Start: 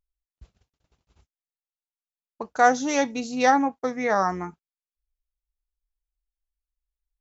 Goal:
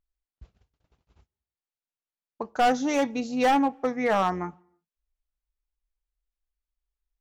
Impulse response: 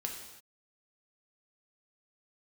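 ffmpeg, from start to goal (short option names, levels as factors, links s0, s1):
-filter_complex "[0:a]highshelf=f=5600:g=-12,asoftclip=type=hard:threshold=0.133,asplit=2[s0][s1];[1:a]atrim=start_sample=2205,highshelf=f=2400:g=-10[s2];[s1][s2]afir=irnorm=-1:irlink=0,volume=0.0944[s3];[s0][s3]amix=inputs=2:normalize=0"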